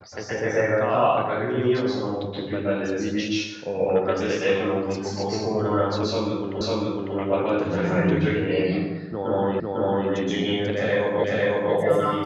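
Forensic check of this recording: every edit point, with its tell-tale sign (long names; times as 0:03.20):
0:06.61: the same again, the last 0.55 s
0:09.60: the same again, the last 0.5 s
0:11.24: the same again, the last 0.5 s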